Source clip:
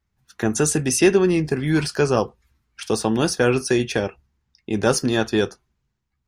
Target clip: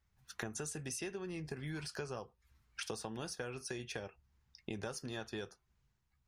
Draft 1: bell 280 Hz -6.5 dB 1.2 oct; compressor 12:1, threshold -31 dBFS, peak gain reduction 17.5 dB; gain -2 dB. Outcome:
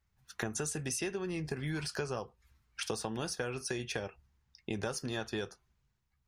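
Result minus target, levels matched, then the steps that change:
compressor: peak gain reduction -6 dB
change: compressor 12:1, threshold -37.5 dBFS, peak gain reduction 23.5 dB

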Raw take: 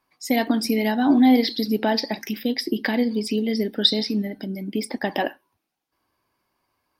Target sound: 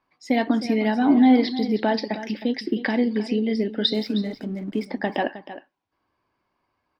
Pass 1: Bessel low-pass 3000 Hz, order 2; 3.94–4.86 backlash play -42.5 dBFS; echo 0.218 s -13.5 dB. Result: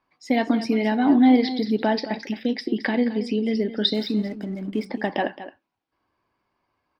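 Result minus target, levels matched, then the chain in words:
echo 95 ms early
Bessel low-pass 3000 Hz, order 2; 3.94–4.86 backlash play -42.5 dBFS; echo 0.313 s -13.5 dB

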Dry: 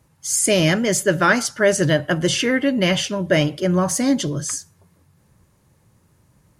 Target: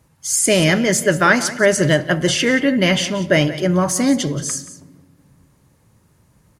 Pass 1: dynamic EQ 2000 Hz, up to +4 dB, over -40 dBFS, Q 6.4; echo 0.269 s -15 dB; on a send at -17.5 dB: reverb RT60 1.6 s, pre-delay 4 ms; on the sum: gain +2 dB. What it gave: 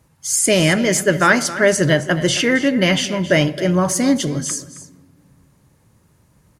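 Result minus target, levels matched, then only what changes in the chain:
echo 90 ms late
change: echo 0.179 s -15 dB

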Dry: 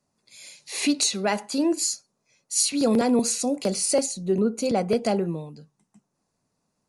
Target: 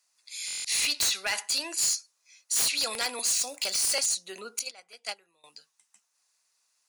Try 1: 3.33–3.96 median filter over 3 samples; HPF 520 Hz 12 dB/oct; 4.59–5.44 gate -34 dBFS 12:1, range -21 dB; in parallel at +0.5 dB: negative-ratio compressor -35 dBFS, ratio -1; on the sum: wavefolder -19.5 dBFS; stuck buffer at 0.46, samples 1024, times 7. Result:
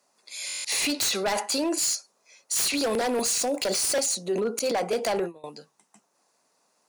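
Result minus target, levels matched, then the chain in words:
500 Hz band +14.0 dB
3.33–3.96 median filter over 3 samples; HPF 2100 Hz 12 dB/oct; 4.59–5.44 gate -34 dBFS 12:1, range -21 dB; in parallel at +0.5 dB: negative-ratio compressor -35 dBFS, ratio -1; on the sum: wavefolder -19.5 dBFS; stuck buffer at 0.46, samples 1024, times 7

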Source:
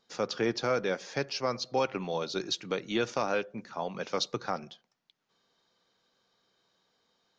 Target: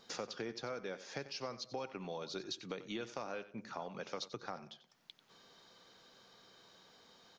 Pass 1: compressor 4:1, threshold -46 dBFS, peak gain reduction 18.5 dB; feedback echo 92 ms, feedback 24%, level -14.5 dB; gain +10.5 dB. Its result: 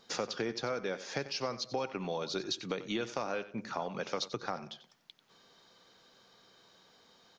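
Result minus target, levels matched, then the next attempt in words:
compressor: peak gain reduction -7 dB
compressor 4:1, threshold -55.5 dBFS, peak gain reduction 25.5 dB; feedback echo 92 ms, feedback 24%, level -14.5 dB; gain +10.5 dB

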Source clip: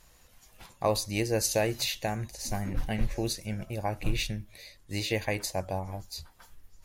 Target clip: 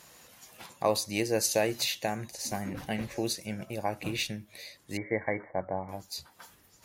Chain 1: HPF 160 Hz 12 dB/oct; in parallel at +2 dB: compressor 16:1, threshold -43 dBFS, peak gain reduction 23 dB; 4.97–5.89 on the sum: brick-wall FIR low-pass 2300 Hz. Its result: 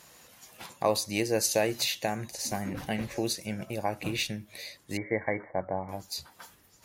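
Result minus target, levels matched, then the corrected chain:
compressor: peak gain reduction -10 dB
HPF 160 Hz 12 dB/oct; in parallel at +2 dB: compressor 16:1, threshold -53.5 dBFS, peak gain reduction 32.5 dB; 4.97–5.89 on the sum: brick-wall FIR low-pass 2300 Hz

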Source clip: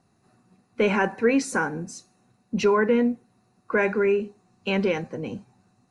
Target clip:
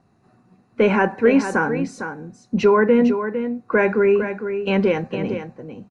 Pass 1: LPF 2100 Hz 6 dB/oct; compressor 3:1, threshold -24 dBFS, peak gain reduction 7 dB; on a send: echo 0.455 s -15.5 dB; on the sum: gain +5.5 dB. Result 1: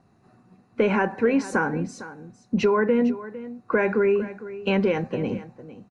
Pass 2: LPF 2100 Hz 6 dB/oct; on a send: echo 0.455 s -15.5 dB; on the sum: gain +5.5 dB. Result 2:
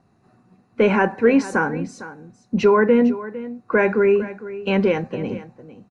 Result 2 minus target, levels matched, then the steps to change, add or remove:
echo-to-direct -6.5 dB
change: echo 0.455 s -9 dB

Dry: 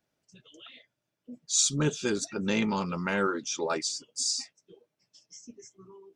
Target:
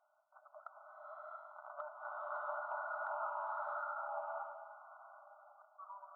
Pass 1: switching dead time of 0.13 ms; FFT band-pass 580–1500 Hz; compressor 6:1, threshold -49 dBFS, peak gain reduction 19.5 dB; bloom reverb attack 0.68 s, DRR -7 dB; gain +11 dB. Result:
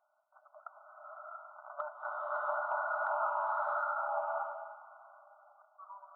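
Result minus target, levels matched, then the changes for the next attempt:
compressor: peak gain reduction -7.5 dB
change: compressor 6:1, threshold -58 dBFS, peak gain reduction 27 dB

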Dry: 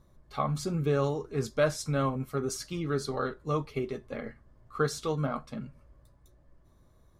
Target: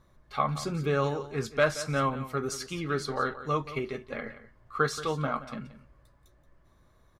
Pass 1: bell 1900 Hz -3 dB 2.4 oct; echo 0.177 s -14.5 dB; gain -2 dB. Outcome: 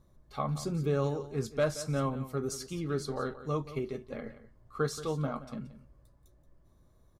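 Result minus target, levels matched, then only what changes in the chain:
2000 Hz band -7.5 dB
change: bell 1900 Hz +8.5 dB 2.4 oct

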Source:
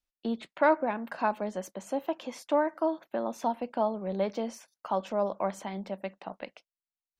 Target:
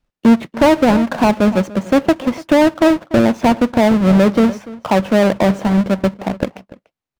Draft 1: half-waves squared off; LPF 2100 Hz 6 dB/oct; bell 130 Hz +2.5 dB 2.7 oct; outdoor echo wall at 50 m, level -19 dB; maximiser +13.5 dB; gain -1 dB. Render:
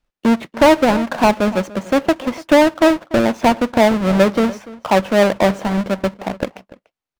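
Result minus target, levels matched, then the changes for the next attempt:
125 Hz band -3.5 dB
change: bell 130 Hz +9 dB 2.7 oct

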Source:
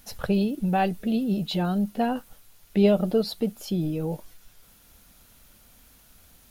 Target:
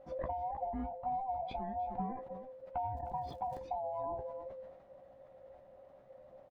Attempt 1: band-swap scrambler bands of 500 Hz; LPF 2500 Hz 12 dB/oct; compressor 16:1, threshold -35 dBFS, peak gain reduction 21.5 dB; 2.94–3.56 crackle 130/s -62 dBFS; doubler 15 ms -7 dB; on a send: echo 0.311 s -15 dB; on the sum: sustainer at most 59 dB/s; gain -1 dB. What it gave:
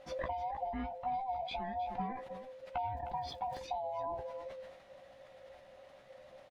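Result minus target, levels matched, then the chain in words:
2000 Hz band +10.5 dB
band-swap scrambler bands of 500 Hz; LPF 840 Hz 12 dB/oct; compressor 16:1, threshold -35 dBFS, peak gain reduction 19 dB; 2.94–3.56 crackle 130/s -62 dBFS; doubler 15 ms -7 dB; on a send: echo 0.311 s -15 dB; on the sum: sustainer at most 59 dB/s; gain -1 dB

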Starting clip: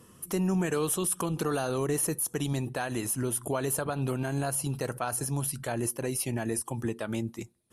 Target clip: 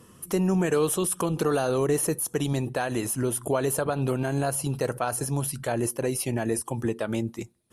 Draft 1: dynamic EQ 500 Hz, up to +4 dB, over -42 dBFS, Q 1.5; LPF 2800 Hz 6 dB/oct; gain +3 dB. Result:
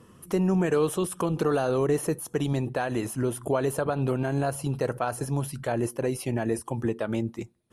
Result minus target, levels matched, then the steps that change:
8000 Hz band -7.5 dB
change: LPF 11000 Hz 6 dB/oct

